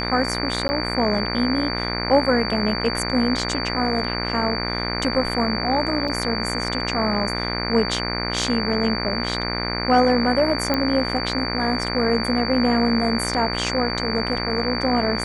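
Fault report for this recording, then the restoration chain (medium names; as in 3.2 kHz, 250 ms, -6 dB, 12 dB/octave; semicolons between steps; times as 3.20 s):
buzz 60 Hz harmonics 40 -27 dBFS
whine 4.6 kHz -28 dBFS
0.68–0.69 s: dropout 10 ms
6.08 s: dropout 4.4 ms
10.74 s: pop -8 dBFS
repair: de-click; band-stop 4.6 kHz, Q 30; de-hum 60 Hz, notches 40; interpolate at 0.68 s, 10 ms; interpolate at 6.08 s, 4.4 ms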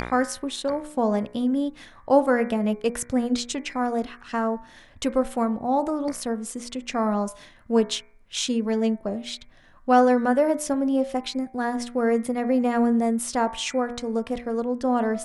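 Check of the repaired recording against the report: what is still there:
nothing left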